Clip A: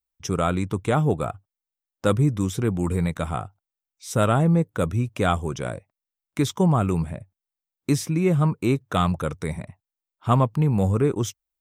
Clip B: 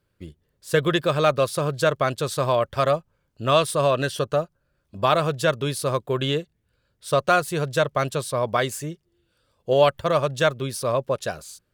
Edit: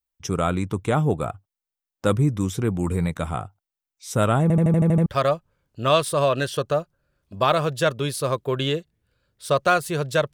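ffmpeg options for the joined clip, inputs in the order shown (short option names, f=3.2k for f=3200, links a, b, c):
-filter_complex "[0:a]apad=whole_dur=10.33,atrim=end=10.33,asplit=8[a][b][c][d][e][f][g][h];[a]atrim=end=4.502[i];[b]atrim=start=4.418:end=4.502[j];[c]atrim=start=4.418:end=4.502[k];[d]atrim=start=4.418:end=4.502[l];[e]atrim=start=4.418:end=4.502[m];[f]atrim=start=4.418:end=4.502[n];[g]atrim=start=4.418:end=4.502[o];[h]atrim=start=4.418:end=4.502[p];[1:a]atrim=start=2.678:end=7.95[q];[i][j]acrossfade=d=0.004:c1=hsin:c2=hsin[r];[r][k]acrossfade=d=0.004:c1=hsin:c2=hsin[s];[s][l]acrossfade=d=0.004:c1=hsin:c2=hsin[t];[t][m]acrossfade=d=0.004:c1=hsin:c2=hsin[u];[u][n]acrossfade=d=0.004:c1=hsin:c2=hsin[v];[v][o]acrossfade=d=0.004:c1=hsin:c2=hsin[w];[w][p]acrossfade=d=0.004:c1=hsin:c2=hsin[x];[x][q]acrossfade=d=0.004:c1=hsin:c2=hsin"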